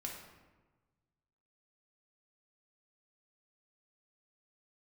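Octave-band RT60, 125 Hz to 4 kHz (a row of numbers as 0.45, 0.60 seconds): 1.9, 1.5, 1.3, 1.2, 1.0, 0.75 seconds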